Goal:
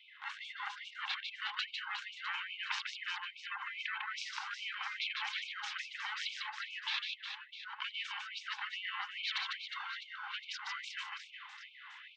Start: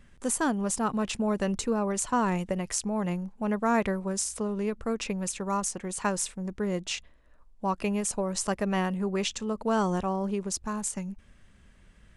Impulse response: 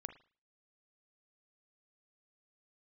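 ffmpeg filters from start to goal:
-filter_complex "[0:a]afftfilt=real='real(if(between(b,1,1008),(2*floor((b-1)/24)+1)*24-b,b),0)':imag='imag(if(between(b,1,1008),(2*floor((b-1)/24)+1)*24-b,b),0)*if(between(b,1,1008),-1,1)':win_size=2048:overlap=0.75,bandreject=frequency=2400:width=27,highpass=frequency=380:width_type=q:width=0.5412,highpass=frequency=380:width_type=q:width=1.307,lowpass=frequency=3500:width_type=q:width=0.5176,lowpass=frequency=3500:width_type=q:width=0.7071,lowpass=frequency=3500:width_type=q:width=1.932,afreqshift=63,adynamicequalizer=threshold=0.00251:dfrequency=2000:dqfactor=4.4:tfrequency=2000:tqfactor=4.4:attack=5:release=100:ratio=0.375:range=3:mode=cutabove:tftype=bell,areverse,acompressor=threshold=-38dB:ratio=20,areverse,afftfilt=real='re*lt(hypot(re,im),0.02)':imag='im*lt(hypot(re,im),0.02)':win_size=1024:overlap=0.75,asplit=2[link_01][link_02];[link_02]aecho=0:1:150|360|654|1066|1642:0.631|0.398|0.251|0.158|0.1[link_03];[link_01][link_03]amix=inputs=2:normalize=0,afftfilt=real='re*gte(b*sr/1024,740*pow(2200/740,0.5+0.5*sin(2*PI*2.4*pts/sr)))':imag='im*gte(b*sr/1024,740*pow(2200/740,0.5+0.5*sin(2*PI*2.4*pts/sr)))':win_size=1024:overlap=0.75,volume=13dB"

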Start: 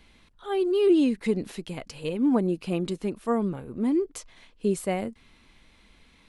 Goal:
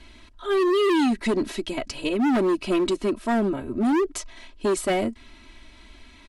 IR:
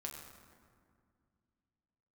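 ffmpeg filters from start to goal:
-filter_complex "[0:a]lowpass=9500,aecho=1:1:3.1:0.97,acrossover=split=2800[link_01][link_02];[link_01]asoftclip=type=hard:threshold=-24.5dB[link_03];[link_03][link_02]amix=inputs=2:normalize=0,volume=5.5dB"

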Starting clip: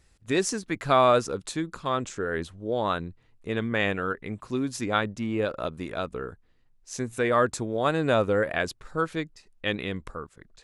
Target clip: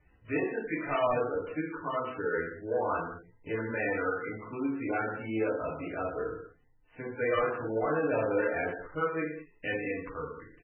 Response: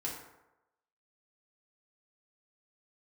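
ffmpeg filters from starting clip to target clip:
-filter_complex "[0:a]highshelf=frequency=5100:gain=-2.5,acrossover=split=360|3100[link_01][link_02][link_03];[link_01]acompressor=threshold=-43dB:ratio=4[link_04];[link_02]asoftclip=type=tanh:threshold=-25dB[link_05];[link_03]aecho=1:1:26|49:0.224|0.316[link_06];[link_04][link_05][link_06]amix=inputs=3:normalize=0[link_07];[1:a]atrim=start_sample=2205,afade=type=out:start_time=0.28:duration=0.01,atrim=end_sample=12789[link_08];[link_07][link_08]afir=irnorm=-1:irlink=0,volume=-1dB" -ar 16000 -c:a libmp3lame -b:a 8k

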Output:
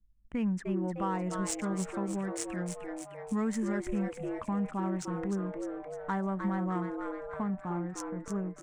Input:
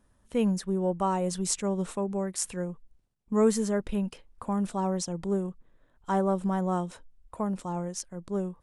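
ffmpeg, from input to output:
ffmpeg -i in.wav -filter_complex "[0:a]anlmdn=0.0631,asplit=2[link_01][link_02];[link_02]alimiter=limit=-20.5dB:level=0:latency=1:release=64,volume=0dB[link_03];[link_01][link_03]amix=inputs=2:normalize=0,equalizer=frequency=250:width_type=o:width=1:gain=3,equalizer=frequency=500:width_type=o:width=1:gain=-10,equalizer=frequency=2000:width_type=o:width=1:gain=11,equalizer=frequency=4000:width_type=o:width=1:gain=-11,equalizer=frequency=8000:width_type=o:width=1:gain=11,adynamicsmooth=sensitivity=1:basefreq=2600,highshelf=frequency=7600:gain=-4,asplit=2[link_04][link_05];[link_05]asplit=6[link_06][link_07][link_08][link_09][link_10][link_11];[link_06]adelay=304,afreqshift=140,volume=-7.5dB[link_12];[link_07]adelay=608,afreqshift=280,volume=-13.9dB[link_13];[link_08]adelay=912,afreqshift=420,volume=-20.3dB[link_14];[link_09]adelay=1216,afreqshift=560,volume=-26.6dB[link_15];[link_10]adelay=1520,afreqshift=700,volume=-33dB[link_16];[link_11]adelay=1824,afreqshift=840,volume=-39.4dB[link_17];[link_12][link_13][link_14][link_15][link_16][link_17]amix=inputs=6:normalize=0[link_18];[link_04][link_18]amix=inputs=2:normalize=0,acompressor=threshold=-42dB:ratio=1.5,volume=-1.5dB" out.wav

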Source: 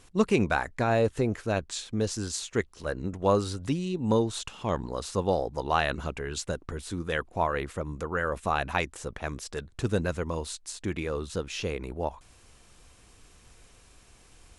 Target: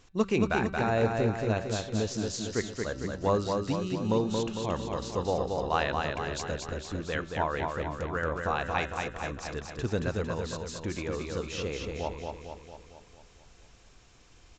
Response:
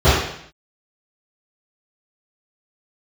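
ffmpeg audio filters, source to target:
-filter_complex "[0:a]bandreject=frequency=192.2:width_type=h:width=4,bandreject=frequency=384.4:width_type=h:width=4,bandreject=frequency=576.6:width_type=h:width=4,bandreject=frequency=768.8:width_type=h:width=4,bandreject=frequency=961:width_type=h:width=4,bandreject=frequency=1153.2:width_type=h:width=4,bandreject=frequency=1345.4:width_type=h:width=4,bandreject=frequency=1537.6:width_type=h:width=4,bandreject=frequency=1729.8:width_type=h:width=4,bandreject=frequency=1922:width_type=h:width=4,bandreject=frequency=2114.2:width_type=h:width=4,bandreject=frequency=2306.4:width_type=h:width=4,bandreject=frequency=2498.6:width_type=h:width=4,bandreject=frequency=2690.8:width_type=h:width=4,bandreject=frequency=2883:width_type=h:width=4,bandreject=frequency=3075.2:width_type=h:width=4,bandreject=frequency=3267.4:width_type=h:width=4,bandreject=frequency=3459.6:width_type=h:width=4,bandreject=frequency=3651.8:width_type=h:width=4,bandreject=frequency=3844:width_type=h:width=4,bandreject=frequency=4036.2:width_type=h:width=4,bandreject=frequency=4228.4:width_type=h:width=4,asplit=2[link_01][link_02];[link_02]aecho=0:1:227|454|681|908|1135|1362|1589|1816:0.631|0.353|0.198|0.111|0.0621|0.0347|0.0195|0.0109[link_03];[link_01][link_03]amix=inputs=2:normalize=0,aresample=16000,aresample=44100,volume=-3dB"

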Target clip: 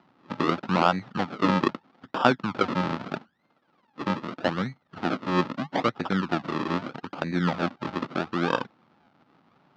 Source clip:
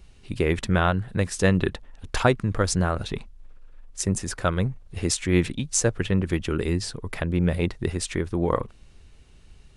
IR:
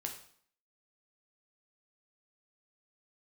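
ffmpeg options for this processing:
-af "acrusher=samples=41:mix=1:aa=0.000001:lfo=1:lforange=41:lforate=0.79,highpass=frequency=160:width=0.5412,highpass=frequency=160:width=1.3066,equalizer=frequency=260:width_type=q:width=4:gain=4,equalizer=frequency=430:width_type=q:width=4:gain=-5,equalizer=frequency=840:width_type=q:width=4:gain=6,equalizer=frequency=1300:width_type=q:width=4:gain=8,lowpass=frequency=4500:width=0.5412,lowpass=frequency=4500:width=1.3066,volume=-1.5dB"

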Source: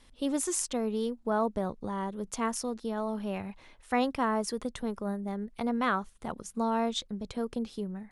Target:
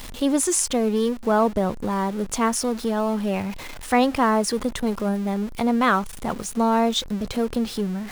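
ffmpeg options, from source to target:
ffmpeg -i in.wav -af "aeval=exprs='val(0)+0.5*0.00944*sgn(val(0))':channel_layout=same,volume=8.5dB" out.wav

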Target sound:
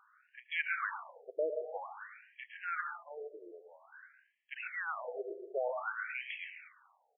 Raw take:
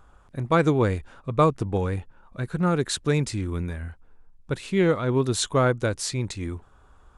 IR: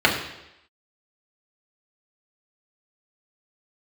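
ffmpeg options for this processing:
-filter_complex "[0:a]aderivative,asplit=2[link_01][link_02];[link_02]adelay=110.8,volume=-10dB,highshelf=frequency=4000:gain=-2.49[link_03];[link_01][link_03]amix=inputs=2:normalize=0,asplit=2[link_04][link_05];[1:a]atrim=start_sample=2205,adelay=136[link_06];[link_05][link_06]afir=irnorm=-1:irlink=0,volume=-27dB[link_07];[link_04][link_07]amix=inputs=2:normalize=0,afftfilt=real='re*between(b*sr/1024,470*pow(2400/470,0.5+0.5*sin(2*PI*0.51*pts/sr))/1.41,470*pow(2400/470,0.5+0.5*sin(2*PI*0.51*pts/sr))*1.41)':imag='im*between(b*sr/1024,470*pow(2400/470,0.5+0.5*sin(2*PI*0.51*pts/sr))/1.41,470*pow(2400/470,0.5+0.5*sin(2*PI*0.51*pts/sr))*1.41)':win_size=1024:overlap=0.75,volume=11dB"

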